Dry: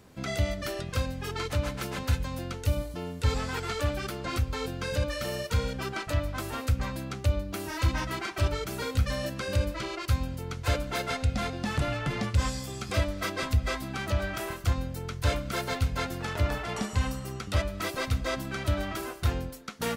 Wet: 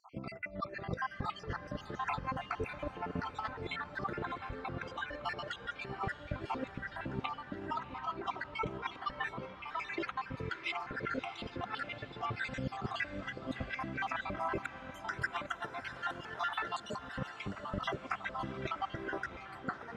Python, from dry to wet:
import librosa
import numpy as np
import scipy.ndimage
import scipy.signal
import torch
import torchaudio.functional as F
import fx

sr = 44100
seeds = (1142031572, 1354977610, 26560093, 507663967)

y = fx.spec_dropout(x, sr, seeds[0], share_pct=58)
y = scipy.signal.sosfilt(scipy.signal.butter(2, 1700.0, 'lowpass', fs=sr, output='sos'), y)
y = fx.low_shelf(y, sr, hz=75.0, db=-12.0)
y = fx.over_compress(y, sr, threshold_db=-43.0, ratio=-0.5)
y = fx.tilt_eq(y, sr, slope=3.0, at=(14.64, 16.99))
y = fx.echo_diffused(y, sr, ms=666, feedback_pct=55, wet_db=-12.0)
y = F.gain(torch.from_numpy(y), 4.0).numpy()